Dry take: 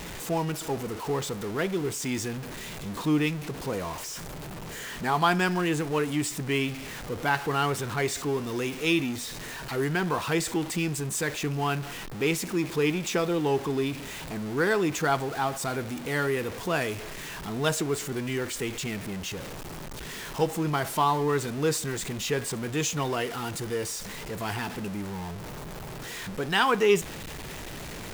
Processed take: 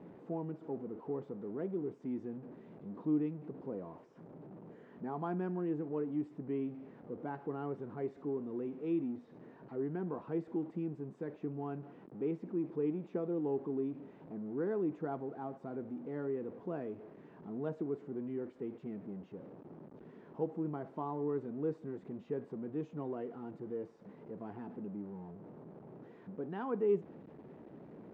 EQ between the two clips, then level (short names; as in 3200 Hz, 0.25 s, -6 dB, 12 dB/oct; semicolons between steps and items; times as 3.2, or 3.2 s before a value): ladder band-pass 310 Hz, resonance 20%; +3.0 dB